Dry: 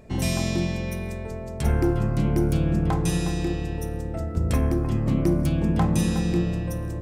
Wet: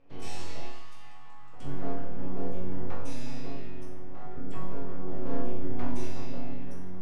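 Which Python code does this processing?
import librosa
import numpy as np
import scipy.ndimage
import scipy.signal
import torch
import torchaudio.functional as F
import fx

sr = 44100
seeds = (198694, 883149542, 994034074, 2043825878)

y = fx.spec_gate(x, sr, threshold_db=-30, keep='strong')
y = fx.highpass(y, sr, hz=380.0, slope=24, at=(0.66, 1.53))
y = fx.room_flutter(y, sr, wall_m=6.9, rt60_s=0.36, at=(4.87, 6.05))
y = np.abs(y)
y = scipy.signal.sosfilt(scipy.signal.butter(2, 8100.0, 'lowpass', fs=sr, output='sos'), y)
y = fx.resonator_bank(y, sr, root=42, chord='sus4', decay_s=0.73)
y = F.gain(torch.from_numpy(y), 5.5).numpy()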